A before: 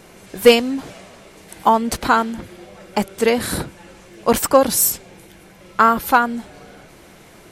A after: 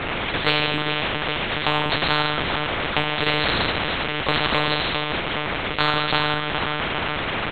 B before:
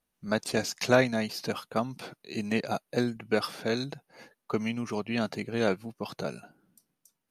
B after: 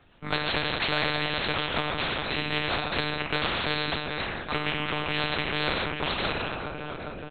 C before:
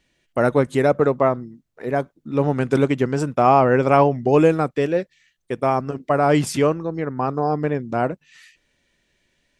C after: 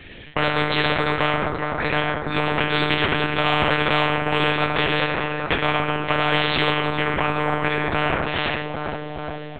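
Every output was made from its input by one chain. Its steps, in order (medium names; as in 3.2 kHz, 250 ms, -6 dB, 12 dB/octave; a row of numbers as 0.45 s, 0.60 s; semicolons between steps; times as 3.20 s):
in parallel at -2.5 dB: compression 8:1, threshold -30 dBFS; on the sum: saturation -6 dBFS; on a send: feedback delay 408 ms, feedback 54%, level -18 dB; on the sum: gated-style reverb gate 240 ms falling, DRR 0.5 dB; monotone LPC vocoder at 8 kHz 150 Hz; spectrum-flattening compressor 4:1; trim -5 dB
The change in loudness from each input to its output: -4.5 LU, +2.5 LU, -1.5 LU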